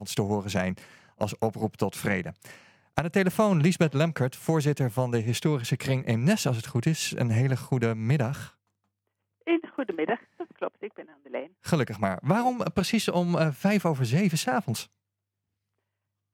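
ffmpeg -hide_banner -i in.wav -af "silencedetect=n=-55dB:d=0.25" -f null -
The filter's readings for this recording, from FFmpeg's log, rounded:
silence_start: 8.53
silence_end: 9.41 | silence_duration: 0.88
silence_start: 14.92
silence_end: 16.34 | silence_duration: 1.41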